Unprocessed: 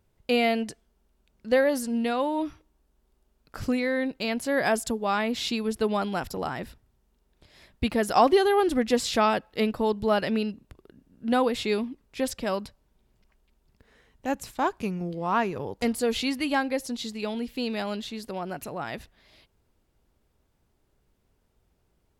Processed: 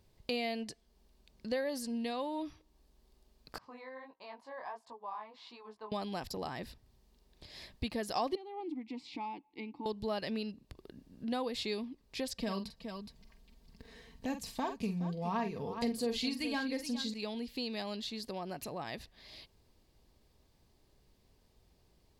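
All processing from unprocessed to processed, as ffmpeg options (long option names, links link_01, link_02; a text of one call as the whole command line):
ffmpeg -i in.wav -filter_complex "[0:a]asettb=1/sr,asplit=3[link_01][link_02][link_03];[link_01]atrim=end=3.584[link_04];[link_02]atrim=start=3.58:end=5.92,asetpts=PTS-STARTPTS,afade=type=in:duration=0.004:curve=qsin,afade=type=out:start_time=2.336:duration=0.004:curve=qsin,bandpass=frequency=990:width_type=q:width=6,flanger=delay=16:depth=7.5:speed=1.5[link_05];[link_03]atrim=start=5.916[link_06];[link_04][link_05]acrossfade=duration=0.004:curve1=hsin:curve2=qsin[link_07];[link_07][link_06]acrossfade=duration=0.004:curve1=qsin:curve2=hsin,asettb=1/sr,asplit=3[link_08][link_09][link_10];[link_08]atrim=end=8.354[link_11];[link_09]atrim=start=8.35:end=9.86,asetpts=PTS-STARTPTS,afade=type=in:duration=0.004:curve=qsin,afade=type=out:start_time=1.506:duration=0.004:curve=qsin,asplit=3[link_12][link_13][link_14];[link_12]bandpass=frequency=300:width_type=q:width=8,volume=0dB[link_15];[link_13]bandpass=frequency=870:width_type=q:width=8,volume=-6dB[link_16];[link_14]bandpass=frequency=2240:width_type=q:width=8,volume=-9dB[link_17];[link_15][link_16][link_17]amix=inputs=3:normalize=0,bandreject=frequency=1300:width=18[link_18];[link_10]atrim=start=9.856[link_19];[link_11][link_18]acrossfade=duration=0.004:curve1=hsin:curve2=qsin[link_20];[link_20][link_19]acrossfade=duration=0.004:curve1=qsin:curve2=hsin,asettb=1/sr,asplit=3[link_21][link_22][link_23];[link_21]atrim=end=12.354[link_24];[link_22]atrim=start=12.35:end=17.14,asetpts=PTS-STARTPTS,afade=type=in:duration=0.004:curve=qsin,afade=type=out:start_time=4.786:duration=0.004:curve=qsin,equalizer=frequency=130:width=0.81:gain=6.5,aecho=1:1:4.4:0.56,atrim=end_sample=211239,aecho=1:1:46|418:0.335|0.224,atrim=end_sample=211239[link_25];[link_23]atrim=start=17.136[link_26];[link_24][link_25]acrossfade=duration=0.004:curve1=hsin:curve2=qsin[link_27];[link_27][link_26]acrossfade=duration=0.004:curve1=qsin:curve2=hsin,equalizer=frequency=4500:width=2.1:gain=8.5,bandreject=frequency=1400:width=5.8,acompressor=threshold=-46dB:ratio=2,volume=1.5dB" out.wav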